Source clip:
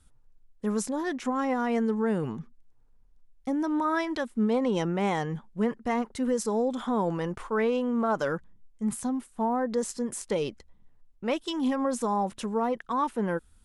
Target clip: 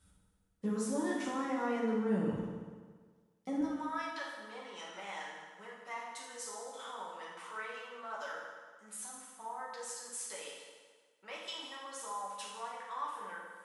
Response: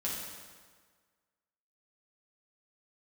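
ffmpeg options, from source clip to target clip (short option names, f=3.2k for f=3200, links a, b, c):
-filter_complex "[0:a]acompressor=threshold=-37dB:ratio=2,asetnsamples=n=441:p=0,asendcmd='2.33 highpass f 200;3.61 highpass f 1100',highpass=52[a];[1:a]atrim=start_sample=2205[b];[a][b]afir=irnorm=-1:irlink=0,volume=-3dB"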